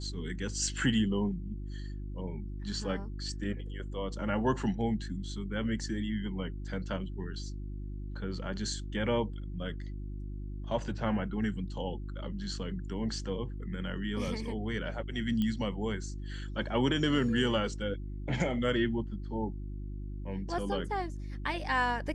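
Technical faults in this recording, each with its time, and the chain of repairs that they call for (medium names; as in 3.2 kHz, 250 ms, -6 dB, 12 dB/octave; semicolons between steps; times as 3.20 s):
hum 50 Hz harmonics 7 -39 dBFS
15.42 s: pop -21 dBFS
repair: de-click; de-hum 50 Hz, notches 7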